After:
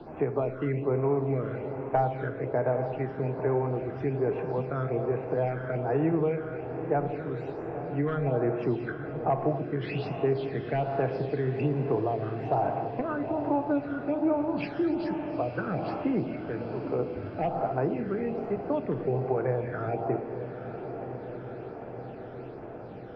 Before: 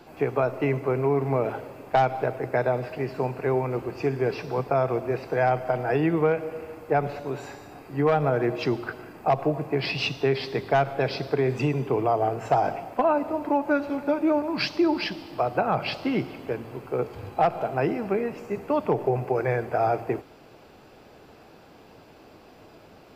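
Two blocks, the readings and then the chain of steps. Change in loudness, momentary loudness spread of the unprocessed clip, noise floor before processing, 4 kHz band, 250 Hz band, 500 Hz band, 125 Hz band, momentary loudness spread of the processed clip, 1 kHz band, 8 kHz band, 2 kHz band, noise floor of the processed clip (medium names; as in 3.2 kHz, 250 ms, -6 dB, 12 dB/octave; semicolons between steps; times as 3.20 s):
-4.0 dB, 8 LU, -51 dBFS, -16.5 dB, -2.0 dB, -3.5 dB, -1.0 dB, 10 LU, -6.5 dB, no reading, -8.0 dB, -41 dBFS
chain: distance through air 330 m; gated-style reverb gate 290 ms flat, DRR 6.5 dB; phase shifter stages 12, 1.2 Hz, lowest notch 760–4600 Hz; echo that smears into a reverb 904 ms, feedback 64%, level -13 dB; three bands compressed up and down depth 40%; trim -3 dB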